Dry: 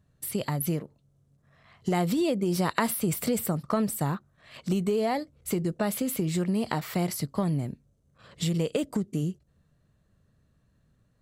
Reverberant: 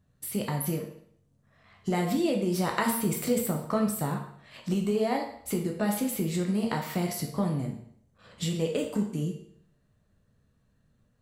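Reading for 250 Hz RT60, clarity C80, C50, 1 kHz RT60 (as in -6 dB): 0.65 s, 10.0 dB, 6.5 dB, 0.65 s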